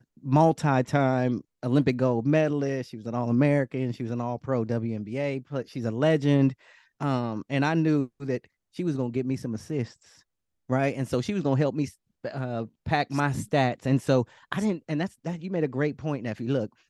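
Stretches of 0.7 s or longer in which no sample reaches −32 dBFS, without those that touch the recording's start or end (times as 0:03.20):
0:09.85–0:10.70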